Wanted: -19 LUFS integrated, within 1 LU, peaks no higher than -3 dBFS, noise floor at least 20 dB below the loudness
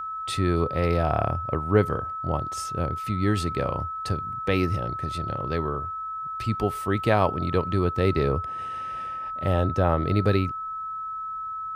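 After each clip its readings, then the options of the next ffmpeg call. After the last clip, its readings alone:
steady tone 1.3 kHz; tone level -30 dBFS; loudness -26.0 LUFS; peak level -6.5 dBFS; loudness target -19.0 LUFS
-> -af "bandreject=f=1300:w=30"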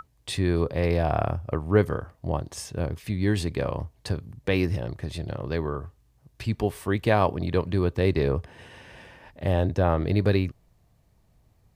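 steady tone not found; loudness -26.5 LUFS; peak level -7.0 dBFS; loudness target -19.0 LUFS
-> -af "volume=2.37,alimiter=limit=0.708:level=0:latency=1"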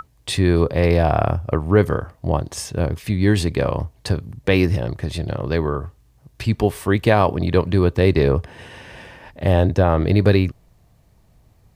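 loudness -19.5 LUFS; peak level -3.0 dBFS; noise floor -56 dBFS

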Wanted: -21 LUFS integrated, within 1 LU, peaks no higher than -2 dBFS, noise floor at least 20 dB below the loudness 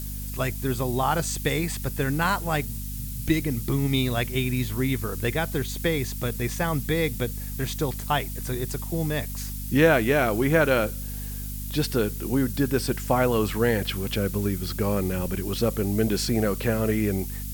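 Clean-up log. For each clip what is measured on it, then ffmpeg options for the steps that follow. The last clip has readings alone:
hum 50 Hz; highest harmonic 250 Hz; hum level -31 dBFS; noise floor -33 dBFS; noise floor target -46 dBFS; loudness -25.5 LUFS; peak level -6.5 dBFS; loudness target -21.0 LUFS
-> -af "bandreject=f=50:t=h:w=4,bandreject=f=100:t=h:w=4,bandreject=f=150:t=h:w=4,bandreject=f=200:t=h:w=4,bandreject=f=250:t=h:w=4"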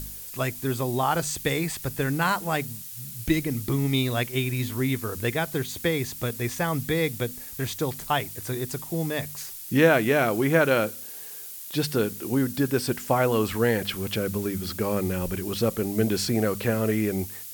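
hum not found; noise floor -39 dBFS; noise floor target -46 dBFS
-> -af "afftdn=nr=7:nf=-39"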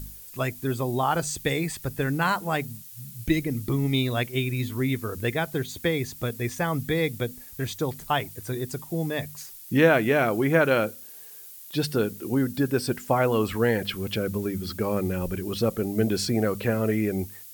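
noise floor -44 dBFS; noise floor target -46 dBFS
-> -af "afftdn=nr=6:nf=-44"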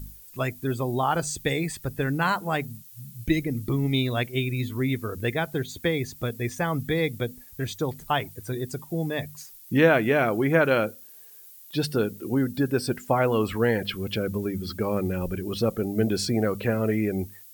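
noise floor -48 dBFS; loudness -26.5 LUFS; peak level -6.0 dBFS; loudness target -21.0 LUFS
-> -af "volume=1.88,alimiter=limit=0.794:level=0:latency=1"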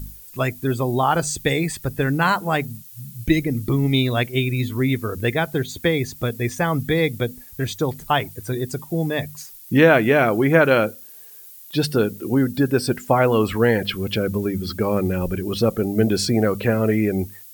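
loudness -21.0 LUFS; peak level -2.0 dBFS; noise floor -43 dBFS

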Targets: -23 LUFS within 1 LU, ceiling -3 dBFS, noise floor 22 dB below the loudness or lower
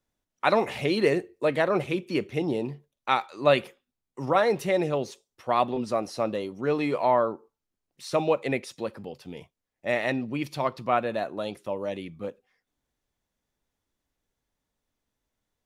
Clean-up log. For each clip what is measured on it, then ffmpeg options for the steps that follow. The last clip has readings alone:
loudness -27.0 LUFS; peak level -6.0 dBFS; loudness target -23.0 LUFS
-> -af "volume=1.58,alimiter=limit=0.708:level=0:latency=1"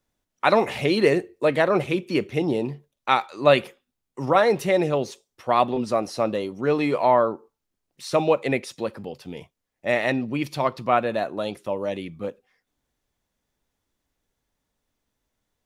loudness -23.0 LUFS; peak level -3.0 dBFS; noise floor -82 dBFS

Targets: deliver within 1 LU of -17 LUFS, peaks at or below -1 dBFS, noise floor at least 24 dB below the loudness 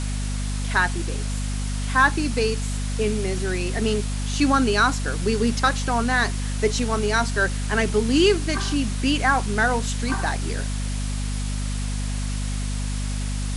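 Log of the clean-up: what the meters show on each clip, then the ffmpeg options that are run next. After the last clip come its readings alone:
hum 50 Hz; highest harmonic 250 Hz; hum level -24 dBFS; noise floor -26 dBFS; noise floor target -48 dBFS; loudness -23.5 LUFS; peak level -5.5 dBFS; loudness target -17.0 LUFS
-> -af "bandreject=f=50:t=h:w=6,bandreject=f=100:t=h:w=6,bandreject=f=150:t=h:w=6,bandreject=f=200:t=h:w=6,bandreject=f=250:t=h:w=6"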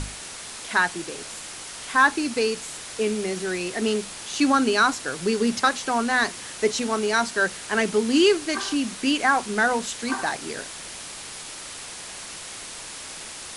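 hum not found; noise floor -38 dBFS; noise floor target -48 dBFS
-> -af "afftdn=nr=10:nf=-38"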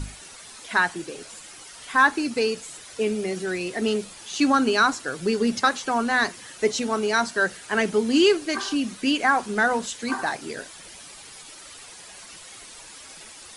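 noise floor -44 dBFS; noise floor target -48 dBFS
-> -af "afftdn=nr=6:nf=-44"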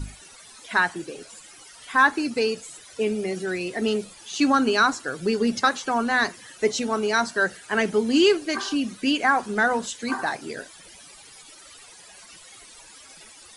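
noise floor -48 dBFS; loudness -23.5 LUFS; peak level -6.0 dBFS; loudness target -17.0 LUFS
-> -af "volume=2.11,alimiter=limit=0.891:level=0:latency=1"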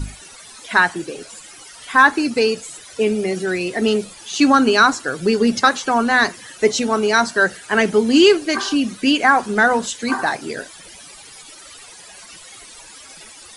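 loudness -17.0 LUFS; peak level -1.0 dBFS; noise floor -41 dBFS

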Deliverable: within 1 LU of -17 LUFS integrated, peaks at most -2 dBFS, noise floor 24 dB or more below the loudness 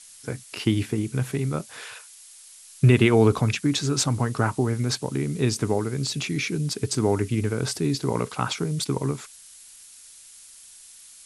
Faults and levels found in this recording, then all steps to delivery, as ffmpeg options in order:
noise floor -48 dBFS; noise floor target -49 dBFS; loudness -24.5 LUFS; peak level -4.5 dBFS; loudness target -17.0 LUFS
-> -af "afftdn=nr=6:nf=-48"
-af "volume=2.37,alimiter=limit=0.794:level=0:latency=1"

